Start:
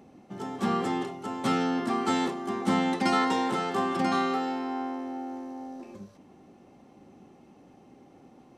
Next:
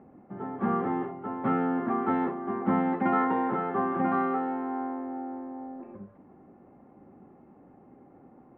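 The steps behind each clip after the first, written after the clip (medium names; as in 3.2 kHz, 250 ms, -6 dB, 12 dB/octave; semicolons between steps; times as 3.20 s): inverse Chebyshev low-pass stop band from 5.7 kHz, stop band 60 dB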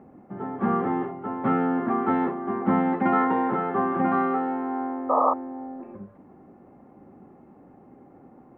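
painted sound noise, 5.09–5.34 s, 450–1300 Hz -24 dBFS; trim +3.5 dB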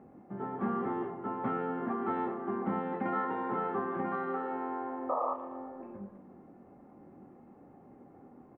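compression 3:1, threshold -26 dBFS, peak gain reduction 8 dB; doubling 25 ms -7 dB; tape echo 114 ms, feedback 73%, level -11 dB, low-pass 1.4 kHz; trim -5.5 dB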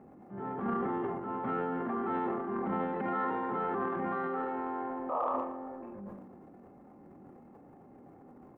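transient shaper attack -6 dB, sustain +10 dB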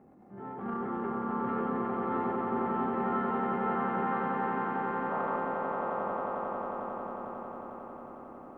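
echo with a slow build-up 90 ms, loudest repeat 8, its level -5 dB; trim -3.5 dB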